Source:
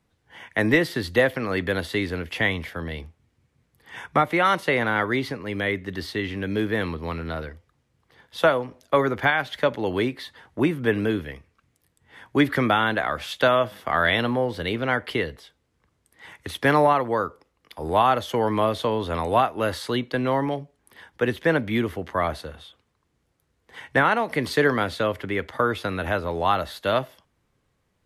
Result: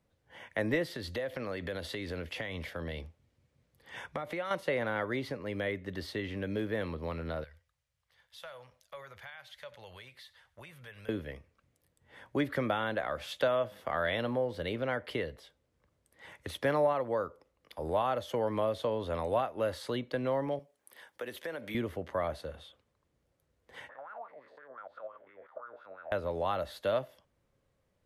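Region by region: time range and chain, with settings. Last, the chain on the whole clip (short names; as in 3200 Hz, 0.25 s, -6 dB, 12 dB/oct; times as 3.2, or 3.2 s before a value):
0.87–4.51 bell 4300 Hz +3.5 dB 1.7 oct + compressor 4:1, threshold -27 dBFS
7.44–11.09 passive tone stack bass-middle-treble 10-0-10 + compressor 2.5:1, threshold -43 dBFS + echo 96 ms -20.5 dB
20.59–21.75 HPF 540 Hz 6 dB/oct + high shelf 8200 Hz +11.5 dB + compressor, threshold -29 dBFS
23.89–26.12 stepped spectrum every 0.1 s + compressor 12:1, threshold -25 dBFS + wah 5.8 Hz 630–1400 Hz, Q 7.9
whole clip: bell 560 Hz +9.5 dB 0.4 oct; compressor 1.5:1, threshold -30 dBFS; low shelf 200 Hz +3 dB; gain -7.5 dB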